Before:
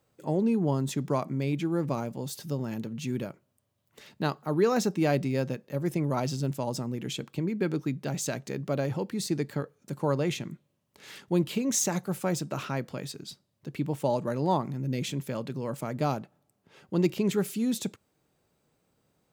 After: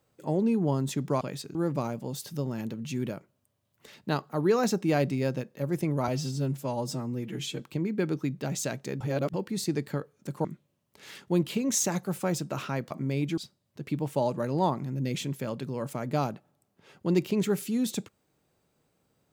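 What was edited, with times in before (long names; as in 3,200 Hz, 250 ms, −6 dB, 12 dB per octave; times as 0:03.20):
0:01.21–0:01.68: swap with 0:12.91–0:13.25
0:06.21–0:07.22: time-stretch 1.5×
0:08.63–0:08.96: reverse
0:10.07–0:10.45: remove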